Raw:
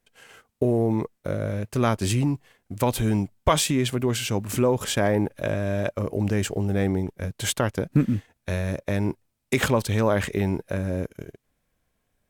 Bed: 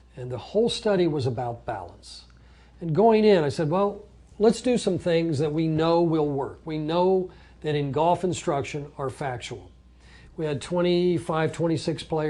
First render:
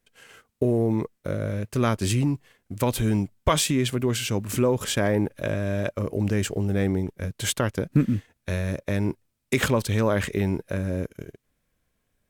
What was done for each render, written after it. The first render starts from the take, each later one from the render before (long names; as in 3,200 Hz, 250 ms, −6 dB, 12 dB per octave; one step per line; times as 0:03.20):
parametric band 780 Hz −4.5 dB 0.64 octaves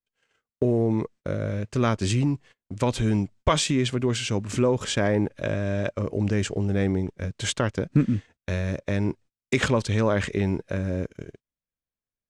noise gate −46 dBFS, range −23 dB
low-pass filter 7,700 Hz 24 dB per octave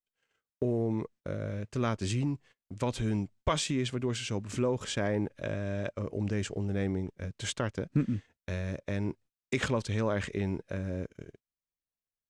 level −7.5 dB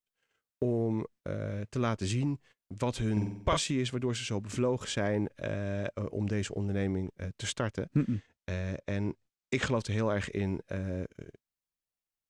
0:03.12–0:03.57: flutter between parallel walls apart 8.1 metres, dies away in 0.64 s
0:08.11–0:09.70: low-pass filter 8,400 Hz 24 dB per octave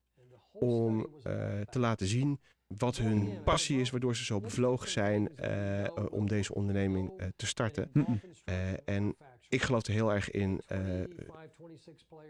mix in bed −27.5 dB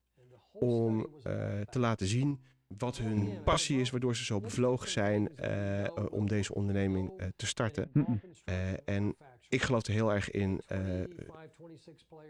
0:02.31–0:03.18: tuned comb filter 65 Hz, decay 0.74 s, mix 40%
0:07.84–0:08.35: high-frequency loss of the air 360 metres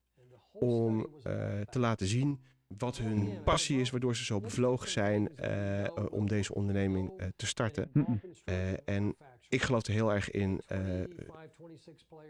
0:08.24–0:08.75: parametric band 380 Hz +7 dB 0.53 octaves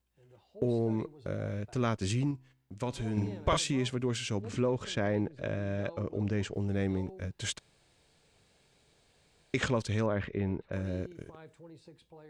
0:04.42–0:06.54: high-frequency loss of the air 71 metres
0:07.59–0:09.54: fill with room tone
0:10.06–0:10.73: high-frequency loss of the air 340 metres